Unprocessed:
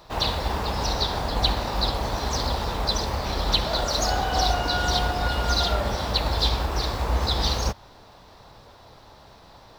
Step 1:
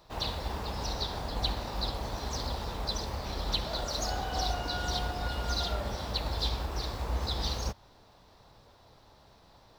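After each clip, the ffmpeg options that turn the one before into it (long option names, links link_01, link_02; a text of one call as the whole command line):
ffmpeg -i in.wav -af "equalizer=frequency=1300:width_type=o:width=2.8:gain=-2.5,volume=-8dB" out.wav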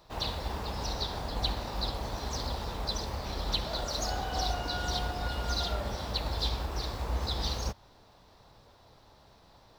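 ffmpeg -i in.wav -af anull out.wav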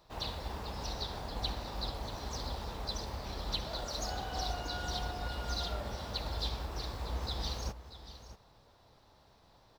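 ffmpeg -i in.wav -af "aecho=1:1:637:0.211,volume=-5dB" out.wav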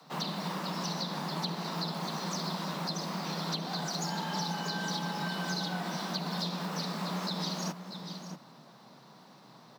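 ffmpeg -i in.wav -filter_complex "[0:a]acrossover=split=100|240|780[link_01][link_02][link_03][link_04];[link_01]acompressor=threshold=-46dB:ratio=4[link_05];[link_02]acompressor=threshold=-55dB:ratio=4[link_06];[link_03]acompressor=threshold=-51dB:ratio=4[link_07];[link_04]acompressor=threshold=-43dB:ratio=4[link_08];[link_05][link_06][link_07][link_08]amix=inputs=4:normalize=0,afreqshift=120,volume=8dB" out.wav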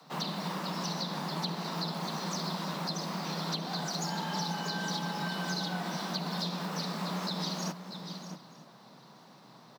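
ffmpeg -i in.wav -af "aecho=1:1:925:0.0708" out.wav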